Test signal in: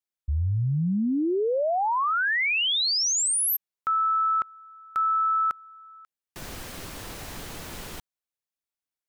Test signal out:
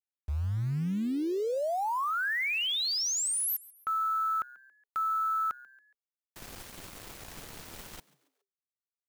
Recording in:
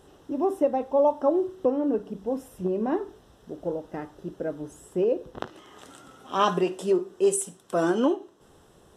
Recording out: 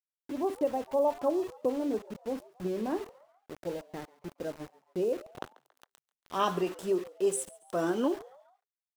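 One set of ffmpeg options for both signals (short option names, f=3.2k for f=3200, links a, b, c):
-filter_complex "[0:a]aeval=exprs='val(0)*gte(abs(val(0)),0.0158)':c=same,asplit=4[a][b][c][d];[b]adelay=139,afreqshift=130,volume=-22dB[e];[c]adelay=278,afreqshift=260,volume=-29.3dB[f];[d]adelay=417,afreqshift=390,volume=-36.7dB[g];[a][e][f][g]amix=inputs=4:normalize=0,volume=-6dB"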